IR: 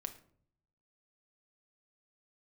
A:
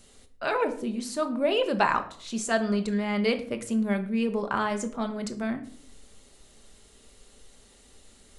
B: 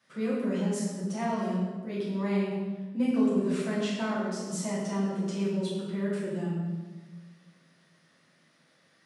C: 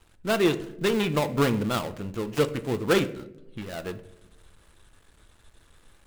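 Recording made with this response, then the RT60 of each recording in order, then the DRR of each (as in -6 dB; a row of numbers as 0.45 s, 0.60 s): A; 0.55 s, 1.4 s, 0.90 s; 6.0 dB, -9.5 dB, 9.5 dB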